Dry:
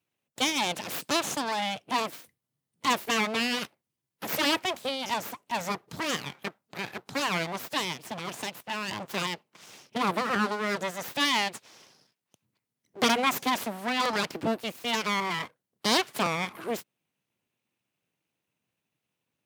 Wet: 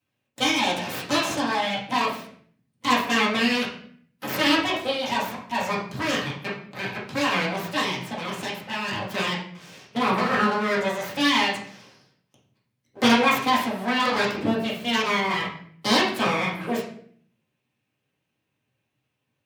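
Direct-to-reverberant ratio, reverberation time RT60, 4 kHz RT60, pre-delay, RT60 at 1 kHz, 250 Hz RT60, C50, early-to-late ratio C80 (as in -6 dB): -7.0 dB, 0.55 s, 0.45 s, 4 ms, 0.50 s, 0.80 s, 5.0 dB, 9.5 dB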